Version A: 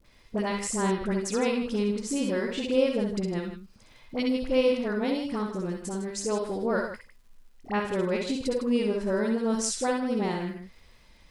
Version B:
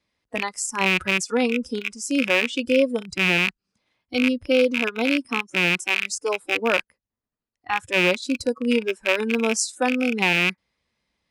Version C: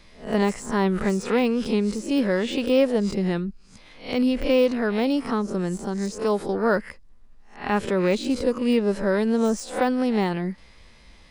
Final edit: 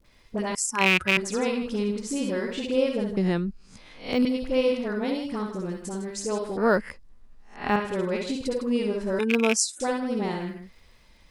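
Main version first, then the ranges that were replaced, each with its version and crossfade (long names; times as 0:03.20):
A
0:00.55–0:01.17: punch in from B
0:03.17–0:04.25: punch in from C
0:06.57–0:07.76: punch in from C
0:09.19–0:09.80: punch in from B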